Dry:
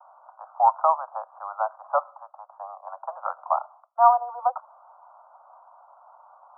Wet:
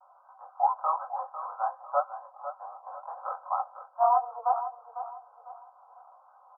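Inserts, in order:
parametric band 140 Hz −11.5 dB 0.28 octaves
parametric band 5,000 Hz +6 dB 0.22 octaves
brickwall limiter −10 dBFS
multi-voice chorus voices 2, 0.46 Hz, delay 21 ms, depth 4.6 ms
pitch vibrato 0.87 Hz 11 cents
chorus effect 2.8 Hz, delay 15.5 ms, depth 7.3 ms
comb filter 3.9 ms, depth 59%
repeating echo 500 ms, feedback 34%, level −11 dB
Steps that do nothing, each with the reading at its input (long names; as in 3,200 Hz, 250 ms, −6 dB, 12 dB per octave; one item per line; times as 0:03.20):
parametric band 140 Hz: nothing at its input below 480 Hz
parametric band 5,000 Hz: nothing at its input above 1,400 Hz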